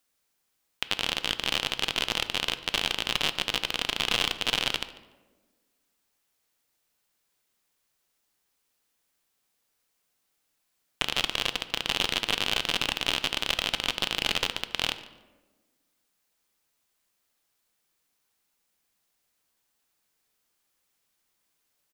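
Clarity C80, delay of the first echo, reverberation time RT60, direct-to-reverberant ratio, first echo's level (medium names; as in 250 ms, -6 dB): 14.5 dB, 145 ms, 1.3 s, 10.5 dB, -20.5 dB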